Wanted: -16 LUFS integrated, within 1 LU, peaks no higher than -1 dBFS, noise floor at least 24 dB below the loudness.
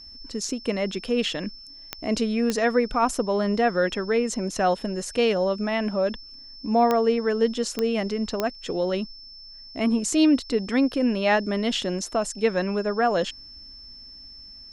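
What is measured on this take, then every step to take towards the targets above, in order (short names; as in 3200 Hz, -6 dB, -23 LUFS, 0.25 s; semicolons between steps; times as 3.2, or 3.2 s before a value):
clicks 5; steady tone 5300 Hz; tone level -42 dBFS; loudness -24.5 LUFS; peak -8.5 dBFS; loudness target -16.0 LUFS
-> de-click; notch 5300 Hz, Q 30; gain +8.5 dB; limiter -1 dBFS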